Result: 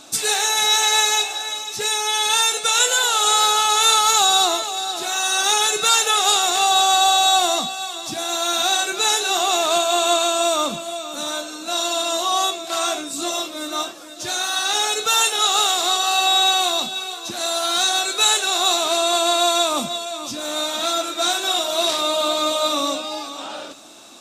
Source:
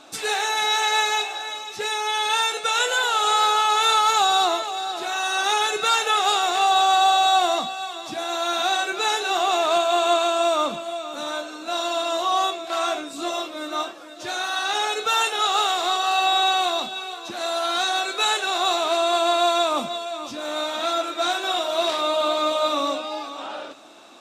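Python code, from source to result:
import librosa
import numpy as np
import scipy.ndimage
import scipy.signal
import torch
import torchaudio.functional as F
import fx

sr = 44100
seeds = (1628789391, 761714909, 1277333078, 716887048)

y = fx.bass_treble(x, sr, bass_db=8, treble_db=13)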